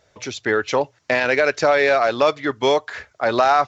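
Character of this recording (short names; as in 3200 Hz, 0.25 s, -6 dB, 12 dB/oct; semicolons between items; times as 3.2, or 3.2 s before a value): noise floor -61 dBFS; spectral tilt -1.5 dB/oct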